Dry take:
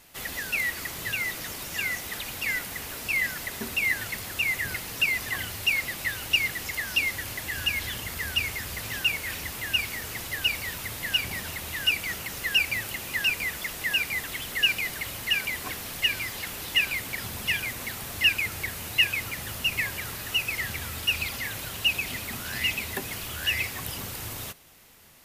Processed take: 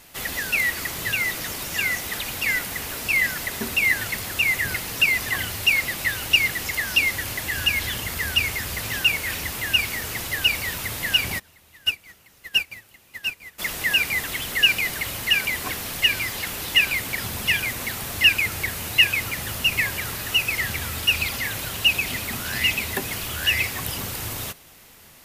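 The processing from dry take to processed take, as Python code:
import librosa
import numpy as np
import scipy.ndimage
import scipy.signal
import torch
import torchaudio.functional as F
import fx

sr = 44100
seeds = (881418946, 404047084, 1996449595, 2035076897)

y = fx.upward_expand(x, sr, threshold_db=-33.0, expansion=2.5, at=(11.38, 13.58), fade=0.02)
y = y * 10.0 ** (5.5 / 20.0)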